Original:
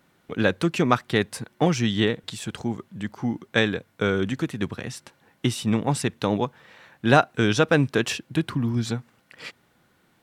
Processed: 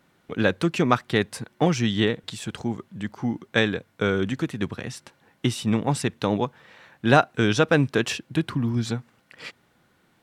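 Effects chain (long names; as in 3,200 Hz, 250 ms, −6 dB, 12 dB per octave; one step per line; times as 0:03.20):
high-shelf EQ 11,000 Hz −4.5 dB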